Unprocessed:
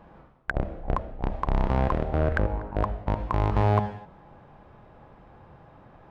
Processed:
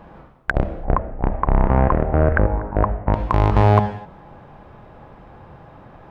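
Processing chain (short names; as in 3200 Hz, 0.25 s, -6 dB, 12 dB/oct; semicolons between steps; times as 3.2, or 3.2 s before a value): 0.85–3.14 LPF 2100 Hz 24 dB/oct; gain +8 dB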